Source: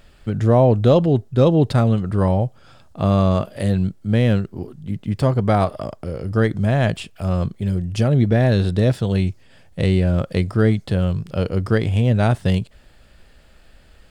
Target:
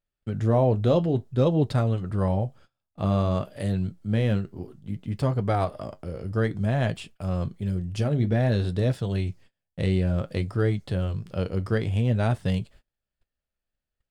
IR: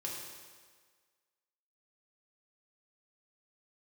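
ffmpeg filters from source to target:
-af "flanger=delay=6.7:depth=4.4:regen=-61:speed=0.56:shape=sinusoidal,agate=range=0.0282:threshold=0.00631:ratio=16:detection=peak,volume=0.708"

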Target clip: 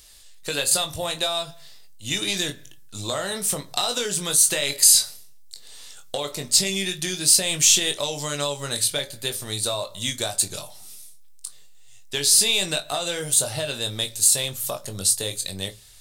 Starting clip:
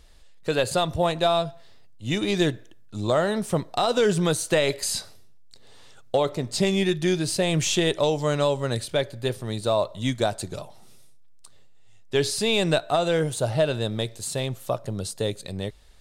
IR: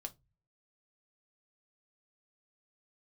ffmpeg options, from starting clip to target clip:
-filter_complex "[0:a]acompressor=threshold=0.0708:ratio=6,crystalizer=i=10:c=0,asplit=2[s0][s1];[1:a]atrim=start_sample=2205,adelay=21[s2];[s1][s2]afir=irnorm=-1:irlink=0,volume=0.75[s3];[s0][s3]amix=inputs=2:normalize=0,volume=0.501"

